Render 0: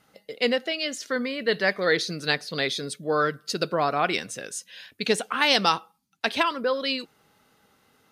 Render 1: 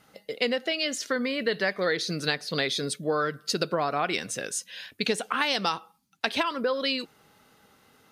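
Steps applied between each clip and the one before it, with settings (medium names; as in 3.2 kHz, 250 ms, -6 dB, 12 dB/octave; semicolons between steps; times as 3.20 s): compression 5:1, threshold -26 dBFS, peak gain reduction 10 dB; trim +3 dB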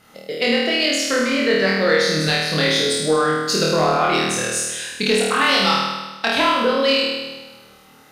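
flutter echo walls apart 4.4 m, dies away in 1.2 s; in parallel at -9 dB: saturation -22 dBFS, distortion -10 dB; on the sum: trim +2.5 dB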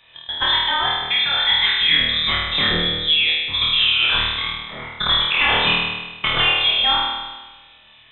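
frequency inversion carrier 3.8 kHz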